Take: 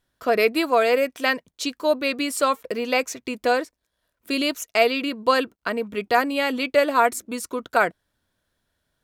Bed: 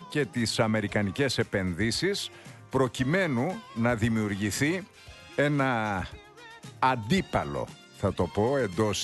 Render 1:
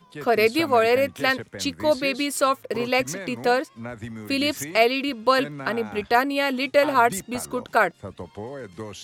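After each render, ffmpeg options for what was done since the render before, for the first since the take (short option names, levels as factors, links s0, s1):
-filter_complex "[1:a]volume=0.335[s0];[0:a][s0]amix=inputs=2:normalize=0"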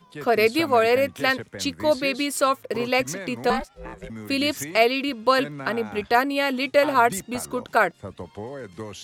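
-filter_complex "[0:a]asettb=1/sr,asplit=3[s0][s1][s2];[s0]atrim=end=3.504[s3];[s1]atrim=start=3.5:end=4.1,asetpts=PTS-STARTPTS,afade=t=in:d=0.004:c=qsin,afade=t=out:st=0.596:d=0.004:c=qsin,aeval=exprs='val(0)*sin(2*PI*280*n/s)':c=same[s4];[s2]atrim=start=4.096[s5];[s3][s4]acrossfade=d=0.004:c1=hsin:c2=qsin[s6];[s6][s5]acrossfade=d=0.004:c1=qsin:c2=hsin"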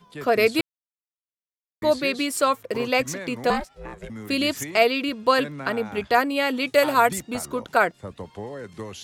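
-filter_complex "[0:a]asettb=1/sr,asplit=3[s0][s1][s2];[s0]atrim=end=6.674[s3];[s1]atrim=start=6.67:end=7.09,asetpts=PTS-STARTPTS,afade=t=in:d=0.004:c=qsin,afade=t=out:st=0.416:d=0.004:c=qsin,aemphasis=mode=production:type=cd[s4];[s2]atrim=start=7.086[s5];[s3][s4]acrossfade=d=0.004:c1=hsin:c2=qsin[s6];[s6][s5]acrossfade=d=0.004:c1=qsin:c2=hsin,asplit=3[s7][s8][s9];[s7]atrim=end=0.61,asetpts=PTS-STARTPTS,afade=t=out:st=0.606:d=0.004:c=hsin[s10];[s8]atrim=start=0.61:end=1.82,asetpts=PTS-STARTPTS,volume=0[s11];[s9]atrim=start=1.82,asetpts=PTS-STARTPTS,afade=t=in:d=0.004:c=hsin[s12];[s10][s11][s12]concat=n=3:v=0:a=1"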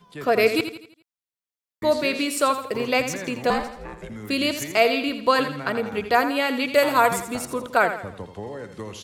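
-af "aecho=1:1:83|166|249|332|415:0.316|0.136|0.0585|0.0251|0.0108"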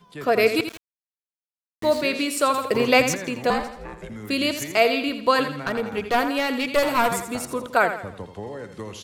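-filter_complex "[0:a]asettb=1/sr,asplit=3[s0][s1][s2];[s0]atrim=end=0.684[s3];[s1]atrim=start=0.68:end=2.01,asetpts=PTS-STARTPTS,afade=t=in:d=0.004:c=qsin,afade=t=out:st=1.326:d=0.004:c=qsin,aeval=exprs='val(0)*gte(abs(val(0)),0.0211)':c=same[s4];[s2]atrim=start=2.006[s5];[s3][s4]acrossfade=d=0.004:c1=hsin:c2=qsin[s6];[s6][s5]acrossfade=d=0.004:c1=qsin:c2=hsin,asettb=1/sr,asplit=3[s7][s8][s9];[s7]atrim=end=2.544[s10];[s8]atrim=start=2.54:end=3.15,asetpts=PTS-STARTPTS,afade=t=in:d=0.004:c=qsin,afade=t=out:st=0.606:d=0.004:c=qsin,acontrast=32[s11];[s9]atrim=start=3.146[s12];[s10][s11]acrossfade=d=0.004:c1=hsin:c2=qsin[s13];[s13][s12]acrossfade=d=0.004:c1=qsin:c2=hsin,asettb=1/sr,asplit=3[s14][s15][s16];[s14]atrim=end=5.564[s17];[s15]atrim=start=5.56:end=7.12,asetpts=PTS-STARTPTS,afade=t=in:d=0.004:c=qsin,afade=t=out:st=1.556:d=0.004:c=qsin,aeval=exprs='clip(val(0),-1,0.0944)':c=same[s18];[s16]atrim=start=7.116[s19];[s17][s18]acrossfade=d=0.004:c1=hsin:c2=qsin[s20];[s20][s19]acrossfade=d=0.004:c1=qsin:c2=hsin"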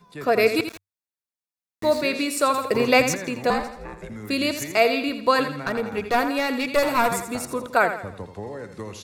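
-af "equalizer=f=96:w=8:g=2,bandreject=f=3100:w=6.9"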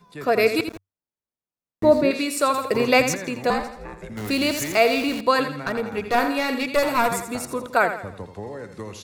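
-filter_complex "[0:a]asettb=1/sr,asplit=3[s0][s1][s2];[s0]atrim=end=0.684[s3];[s1]atrim=start=0.68:end=2.11,asetpts=PTS-STARTPTS,afade=t=in:d=0.004:c=qsin,afade=t=out:st=1.426:d=0.004:c=qsin,tiltshelf=f=1200:g=8.5[s4];[s2]atrim=start=2.106[s5];[s3][s4]acrossfade=d=0.004:c1=hsin:c2=qsin[s6];[s6][s5]acrossfade=d=0.004:c1=qsin:c2=hsin,asettb=1/sr,asplit=3[s7][s8][s9];[s7]atrim=end=4.174[s10];[s8]atrim=start=4.17:end=5.21,asetpts=PTS-STARTPTS,afade=t=in:d=0.004:c=qsin,afade=t=out:st=1.036:d=0.004:c=qsin,aeval=exprs='val(0)+0.5*0.0355*sgn(val(0))':c=same[s11];[s9]atrim=start=5.206[s12];[s10][s11]acrossfade=d=0.004:c1=hsin:c2=qsin[s13];[s13][s12]acrossfade=d=0.004:c1=qsin:c2=hsin,asettb=1/sr,asplit=3[s14][s15][s16];[s14]atrim=end=6.034[s17];[s15]atrim=start=6.03:end=6.63,asetpts=PTS-STARTPTS,afade=t=in:d=0.004:c=qsin,afade=t=out:st=0.596:d=0.004:c=qsin,asplit=2[s18][s19];[s19]adelay=42,volume=0.447[s20];[s18][s20]amix=inputs=2:normalize=0,atrim=end_sample=26460[s21];[s16]atrim=start=6.626[s22];[s17][s21]acrossfade=d=0.004:c1=hsin:c2=qsin[s23];[s23][s22]acrossfade=d=0.004:c1=qsin:c2=hsin"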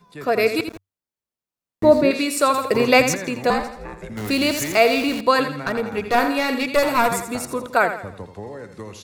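-af "dynaudnorm=f=270:g=11:m=1.78"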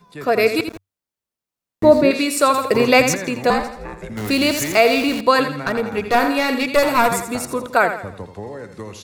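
-af "volume=1.33,alimiter=limit=0.794:level=0:latency=1"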